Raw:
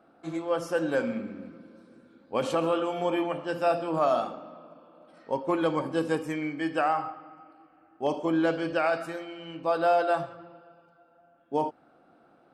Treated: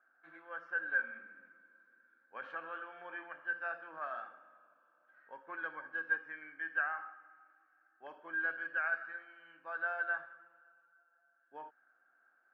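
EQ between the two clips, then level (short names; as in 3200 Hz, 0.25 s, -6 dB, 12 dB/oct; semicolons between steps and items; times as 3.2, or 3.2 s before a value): band-pass 1600 Hz, Q 17; air absorption 200 m; +9.0 dB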